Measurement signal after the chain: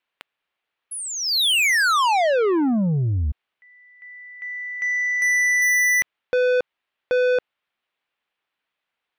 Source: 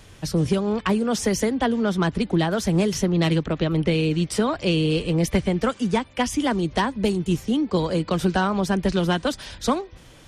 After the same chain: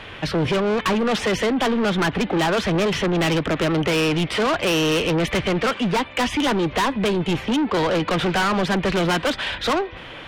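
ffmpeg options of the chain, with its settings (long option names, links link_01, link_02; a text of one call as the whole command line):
ffmpeg -i in.wav -filter_complex "[0:a]highshelf=frequency=4400:width_type=q:width=1.5:gain=-13,asplit=2[link_01][link_02];[link_02]highpass=frequency=720:poles=1,volume=14dB,asoftclip=type=tanh:threshold=-9dB[link_03];[link_01][link_03]amix=inputs=2:normalize=0,lowpass=frequency=2800:poles=1,volume=-6dB,asoftclip=type=tanh:threshold=-25dB,volume=7.5dB" out.wav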